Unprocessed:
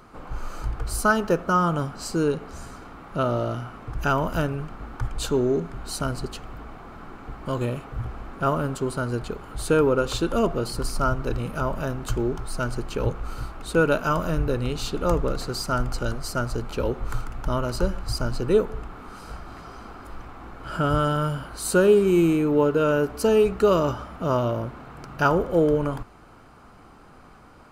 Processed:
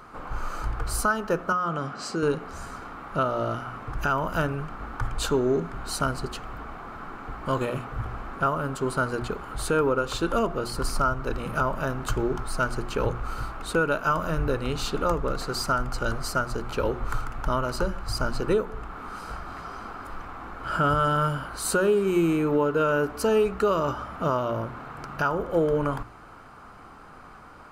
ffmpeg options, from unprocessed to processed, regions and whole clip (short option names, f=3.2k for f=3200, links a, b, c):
-filter_complex "[0:a]asettb=1/sr,asplit=3[a][b][c];[a]atrim=end=1.524[d];[b]atrim=start=1.52:end=2.23,asetpts=PTS-STARTPTS,afade=t=in:d=0.004:c=qsin,afade=t=out:st=0.706:d=0.004:c=qsin,highpass=140,lowpass=6.7k,bandreject=f=920:w=7.2,acompressor=threshold=-24dB:ratio=4:attack=3.2:release=140:knee=1:detection=peak[e];[c]atrim=start=2.226[f];[d][e]acrossfade=d=0.004:c1=hsin:c2=qsin[g];[g][f]acrossfade=d=0.004:c1=qsin:c2=hsin,equalizer=f=1.3k:w=1:g=6,bandreject=f=60:t=h:w=6,bandreject=f=120:t=h:w=6,bandreject=f=180:t=h:w=6,bandreject=f=240:t=h:w=6,bandreject=f=300:t=h:w=6,bandreject=f=360:t=h:w=6,alimiter=limit=-14dB:level=0:latency=1:release=474"